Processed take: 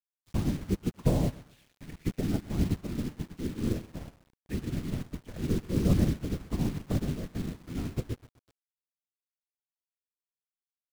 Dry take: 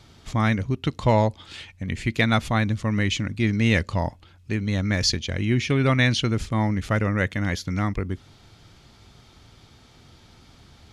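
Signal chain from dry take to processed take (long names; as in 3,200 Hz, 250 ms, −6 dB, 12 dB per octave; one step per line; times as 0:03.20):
treble cut that deepens with the level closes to 350 Hz, closed at −20 dBFS
0:03.35–0:04.02: notch comb filter 1,200 Hz
random phases in short frames
repeating echo 127 ms, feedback 54%, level −9 dB
bit reduction 6 bits
expander for the loud parts 2.5 to 1, over −35 dBFS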